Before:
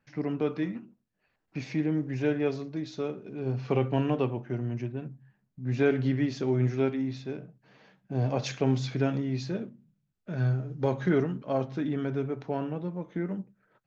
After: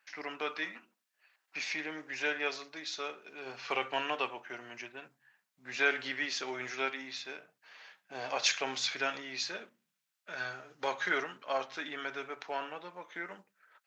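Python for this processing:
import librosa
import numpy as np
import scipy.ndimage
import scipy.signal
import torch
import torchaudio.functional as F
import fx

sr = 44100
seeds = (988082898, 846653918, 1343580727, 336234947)

y = scipy.signal.sosfilt(scipy.signal.butter(2, 1300.0, 'highpass', fs=sr, output='sos'), x)
y = y * 10.0 ** (8.5 / 20.0)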